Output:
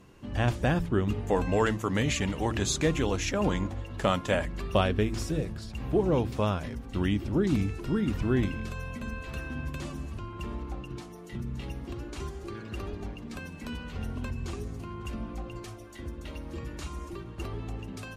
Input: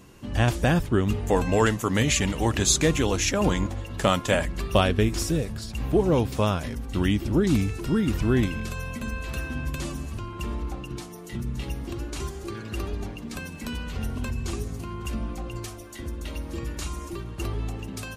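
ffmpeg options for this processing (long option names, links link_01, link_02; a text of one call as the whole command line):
ffmpeg -i in.wav -af "aemphasis=mode=reproduction:type=cd,bandreject=frequency=56.35:width_type=h:width=4,bandreject=frequency=112.7:width_type=h:width=4,bandreject=frequency=169.05:width_type=h:width=4,bandreject=frequency=225.4:width_type=h:width=4,bandreject=frequency=281.75:width_type=h:width=4,bandreject=frequency=338.1:width_type=h:width=4,volume=-4dB" out.wav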